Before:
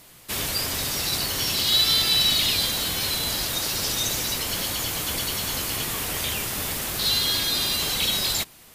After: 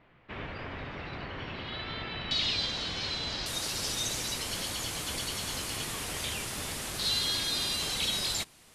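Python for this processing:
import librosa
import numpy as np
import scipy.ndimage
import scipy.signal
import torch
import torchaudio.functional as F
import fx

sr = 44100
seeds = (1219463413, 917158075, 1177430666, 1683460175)

y = fx.lowpass(x, sr, hz=fx.steps((0.0, 2400.0), (2.31, 5300.0), (3.46, 11000.0)), slope=24)
y = y * 10.0 ** (-6.5 / 20.0)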